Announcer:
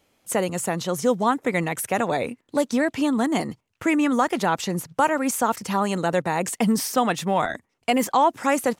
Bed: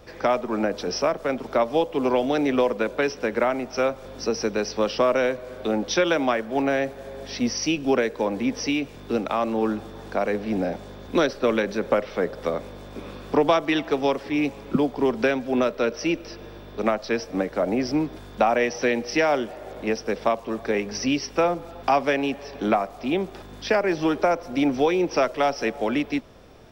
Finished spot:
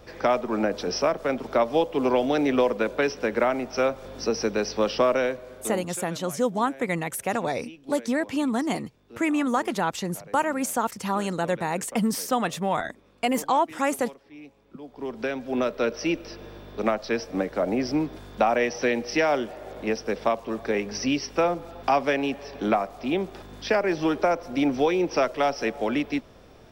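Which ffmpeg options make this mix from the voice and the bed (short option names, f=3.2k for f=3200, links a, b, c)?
-filter_complex "[0:a]adelay=5350,volume=-3.5dB[a];[1:a]volume=19.5dB,afade=t=out:st=5.02:d=0.98:silence=0.0891251,afade=t=in:st=14.8:d=1.03:silence=0.1[b];[a][b]amix=inputs=2:normalize=0"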